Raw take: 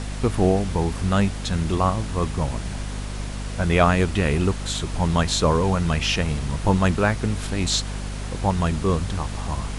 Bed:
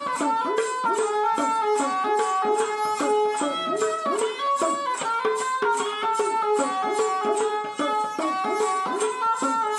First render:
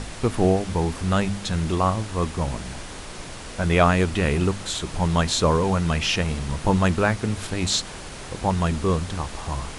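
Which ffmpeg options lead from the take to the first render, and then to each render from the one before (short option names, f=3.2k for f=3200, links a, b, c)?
-af "bandreject=f=50:t=h:w=4,bandreject=f=100:t=h:w=4,bandreject=f=150:t=h:w=4,bandreject=f=200:t=h:w=4,bandreject=f=250:t=h:w=4"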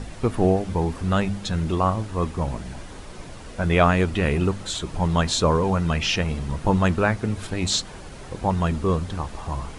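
-af "afftdn=nr=8:nf=-37"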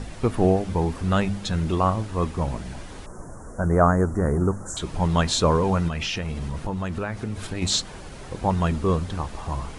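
-filter_complex "[0:a]asettb=1/sr,asplit=3[a][b][c];[a]atrim=end=3.064[d];[b]atrim=start=3.06:end=4.77,asetpts=PTS-STARTPTS,afade=t=in:d=0.004:c=qsin,afade=t=out:st=1.706:d=0.004:c=qsin,asuperstop=centerf=3200:order=8:qfactor=0.67[e];[c]atrim=start=4.766[f];[d][e]acrossfade=d=0.004:c1=hsin:c2=qsin[g];[g][f]acrossfade=d=0.004:c1=qsin:c2=hsin,asettb=1/sr,asplit=3[h][i][j];[h]atrim=end=5.884[k];[i]atrim=start=5.88:end=7.62,asetpts=PTS-STARTPTS,afade=t=in:d=0.004:c=qsin,afade=t=out:st=1.736:d=0.004:c=qsin,acompressor=threshold=-24dB:ratio=6:attack=3.2:release=140:knee=1:detection=peak[l];[j]atrim=start=7.616[m];[k][l]acrossfade=d=0.004:c1=hsin:c2=qsin[n];[n][m]acrossfade=d=0.004:c1=qsin:c2=hsin"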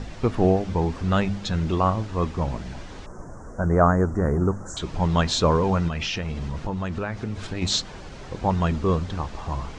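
-af "lowpass=f=6.8k:w=0.5412,lowpass=f=6.8k:w=1.3066"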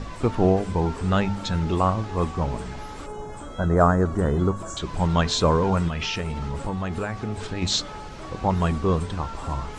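-filter_complex "[1:a]volume=-16dB[a];[0:a][a]amix=inputs=2:normalize=0"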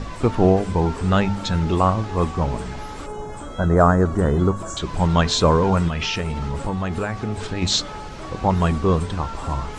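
-af "volume=3.5dB,alimiter=limit=-3dB:level=0:latency=1"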